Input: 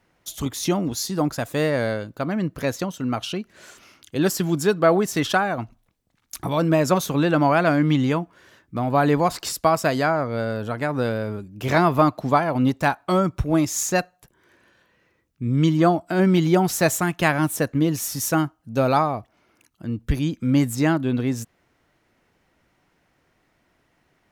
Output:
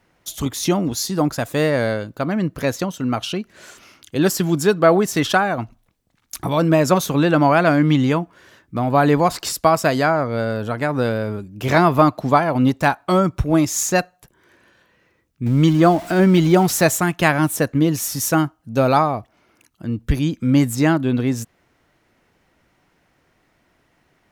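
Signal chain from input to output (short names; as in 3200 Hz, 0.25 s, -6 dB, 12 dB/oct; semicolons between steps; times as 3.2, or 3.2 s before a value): 15.46–16.83 zero-crossing step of -33.5 dBFS; gain +3.5 dB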